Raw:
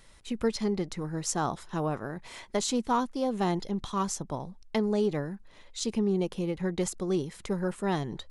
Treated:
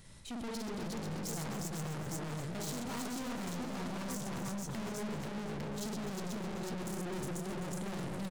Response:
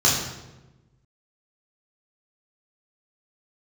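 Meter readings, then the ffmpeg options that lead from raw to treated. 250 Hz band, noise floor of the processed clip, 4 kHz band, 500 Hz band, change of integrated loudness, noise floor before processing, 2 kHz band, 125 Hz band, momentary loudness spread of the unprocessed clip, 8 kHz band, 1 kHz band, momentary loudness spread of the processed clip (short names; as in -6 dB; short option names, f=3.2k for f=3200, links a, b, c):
-8.5 dB, -42 dBFS, -6.5 dB, -12.0 dB, -8.5 dB, -55 dBFS, -4.5 dB, -5.5 dB, 9 LU, -6.5 dB, -10.5 dB, 1 LU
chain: -filter_complex "[0:a]equalizer=f=140:t=o:w=1.9:g=14,asplit=2[a][b];[b]aecho=0:1:51|97|123|359|488|853:0.631|0.251|0.473|0.708|0.668|0.631[c];[a][c]amix=inputs=2:normalize=0,aeval=exprs='(tanh(56.2*val(0)+0.25)-tanh(0.25))/56.2':c=same,highshelf=f=4.6k:g=7,asplit=2[d][e];[e]aecho=0:1:257|514|771|1028|1285|1542|1799:0.282|0.163|0.0948|0.055|0.0319|0.0185|0.0107[f];[d][f]amix=inputs=2:normalize=0,volume=-4.5dB"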